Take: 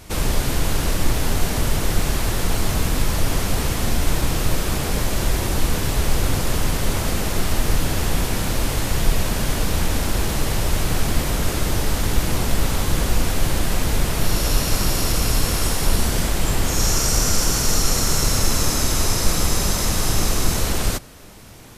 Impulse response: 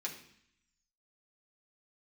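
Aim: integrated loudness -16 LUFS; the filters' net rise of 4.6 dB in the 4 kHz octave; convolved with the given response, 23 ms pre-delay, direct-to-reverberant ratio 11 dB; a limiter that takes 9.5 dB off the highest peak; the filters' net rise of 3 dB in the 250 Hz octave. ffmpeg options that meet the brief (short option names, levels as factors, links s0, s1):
-filter_complex "[0:a]equalizer=f=250:t=o:g=4,equalizer=f=4000:t=o:g=6,alimiter=limit=0.237:level=0:latency=1,asplit=2[s0][s1];[1:a]atrim=start_sample=2205,adelay=23[s2];[s1][s2]afir=irnorm=-1:irlink=0,volume=0.266[s3];[s0][s3]amix=inputs=2:normalize=0,volume=2.24"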